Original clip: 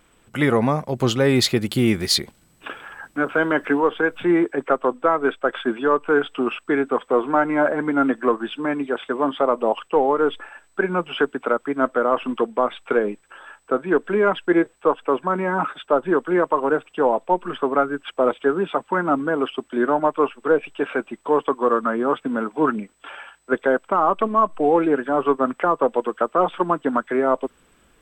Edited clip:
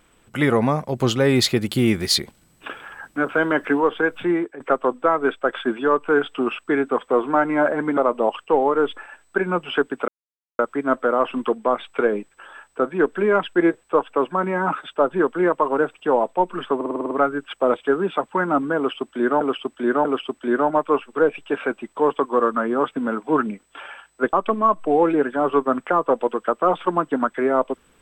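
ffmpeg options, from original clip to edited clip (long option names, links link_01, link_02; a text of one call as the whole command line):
ffmpeg -i in.wav -filter_complex "[0:a]asplit=14[link_01][link_02][link_03][link_04][link_05][link_06][link_07][link_08][link_09][link_10][link_11][link_12][link_13][link_14];[link_01]atrim=end=4.6,asetpts=PTS-STARTPTS,afade=type=out:start_time=4.18:duration=0.42:silence=0.16788[link_15];[link_02]atrim=start=4.6:end=7.972,asetpts=PTS-STARTPTS,afade=type=in:duration=0.004:curve=hsin:silence=0.16788[link_16];[link_03]atrim=start=9.398:end=11.51,asetpts=PTS-STARTPTS,afade=type=out:start_time=2.108:duration=0.004:curve=hsin,apad=pad_dur=0.51[link_17];[link_04]atrim=start=11.51:end=17.732,asetpts=PTS-STARTPTS,afade=type=in:duration=0.004:curve=hsin[link_18];[link_05]atrim=start=17.678:end=17.732[link_19];[link_06]atrim=start=17.678:end=17.732[link_20];[link_07]atrim=start=17.678:end=17.732[link_21];[link_08]atrim=start=17.678:end=17.732[link_22];[link_09]atrim=start=17.678:end=17.732[link_23];[link_10]atrim=start=17.678:end=17.732[link_24];[link_11]atrim=start=17.678:end=19.982[link_25];[link_12]atrim=start=19.338:end=19.982[link_26];[link_13]atrim=start=19.338:end=23.622[link_27];[link_14]atrim=start=24.058[link_28];[link_15][link_16]concat=n=2:v=0:a=1[link_29];[link_17][link_18]concat=n=2:v=0:a=1[link_30];[link_29][link_30]acrossfade=duration=0.004:curve1=hsin:curve2=hsin[link_31];[link_31][link_19]acrossfade=duration=0.004:curve1=hsin:curve2=hsin[link_32];[link_32][link_20]acrossfade=duration=0.004:curve1=hsin:curve2=hsin[link_33];[link_33][link_21]acrossfade=duration=0.004:curve1=hsin:curve2=hsin[link_34];[link_34][link_22]acrossfade=duration=0.004:curve1=hsin:curve2=hsin[link_35];[link_35][link_23]acrossfade=duration=0.004:curve1=hsin:curve2=hsin[link_36];[link_36][link_24]acrossfade=duration=0.004:curve1=hsin:curve2=hsin[link_37];[link_37][link_25]acrossfade=duration=0.004:curve1=hsin:curve2=hsin[link_38];[link_38][link_26]acrossfade=duration=0.004:curve1=hsin:curve2=hsin[link_39];[link_39][link_27]acrossfade=duration=0.004:curve1=hsin:curve2=hsin[link_40];[link_40][link_28]acrossfade=duration=0.004:curve1=hsin:curve2=hsin" out.wav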